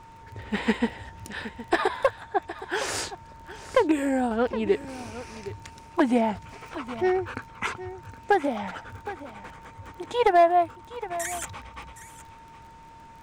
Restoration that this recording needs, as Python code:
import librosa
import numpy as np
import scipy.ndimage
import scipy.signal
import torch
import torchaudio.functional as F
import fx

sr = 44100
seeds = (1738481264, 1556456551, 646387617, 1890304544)

y = fx.fix_declip(x, sr, threshold_db=-12.0)
y = fx.fix_declick_ar(y, sr, threshold=6.5)
y = fx.notch(y, sr, hz=910.0, q=30.0)
y = fx.fix_echo_inverse(y, sr, delay_ms=766, level_db=-15.0)